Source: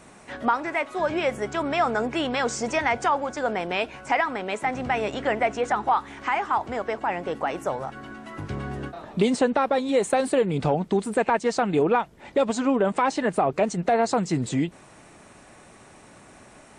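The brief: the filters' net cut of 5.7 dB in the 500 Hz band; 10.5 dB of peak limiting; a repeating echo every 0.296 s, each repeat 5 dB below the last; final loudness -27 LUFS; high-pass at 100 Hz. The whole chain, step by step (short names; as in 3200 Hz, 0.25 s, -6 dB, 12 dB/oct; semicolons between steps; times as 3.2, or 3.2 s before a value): HPF 100 Hz; bell 500 Hz -7 dB; limiter -21.5 dBFS; feedback echo 0.296 s, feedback 56%, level -5 dB; gain +3 dB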